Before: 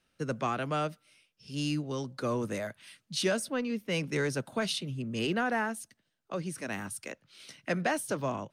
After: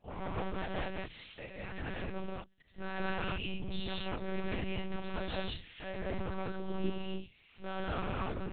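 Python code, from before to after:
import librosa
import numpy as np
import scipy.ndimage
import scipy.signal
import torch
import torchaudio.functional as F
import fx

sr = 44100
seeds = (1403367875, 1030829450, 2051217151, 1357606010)

y = x[::-1].copy()
y = fx.spec_box(y, sr, start_s=3.15, length_s=0.31, low_hz=210.0, high_hz=2200.0, gain_db=-18)
y = fx.dynamic_eq(y, sr, hz=290.0, q=0.93, threshold_db=-40.0, ratio=4.0, max_db=4)
y = 10.0 ** (-34.5 / 20.0) * np.tanh(y / 10.0 ** (-34.5 / 20.0))
y = fx.hum_notches(y, sr, base_hz=60, count=3)
y = fx.rev_gated(y, sr, seeds[0], gate_ms=240, shape='rising', drr_db=-4.0)
y = fx.lpc_monotone(y, sr, seeds[1], pitch_hz=190.0, order=8)
y = y * librosa.db_to_amplitude(-2.5)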